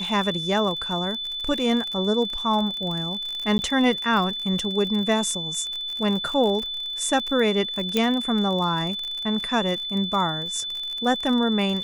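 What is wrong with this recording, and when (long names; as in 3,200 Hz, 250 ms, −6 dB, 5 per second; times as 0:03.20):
surface crackle 43 per second −28 dBFS
whistle 3,500 Hz −28 dBFS
0:03.58–0:03.59: drop-out 10 ms
0:07.97: click −8 dBFS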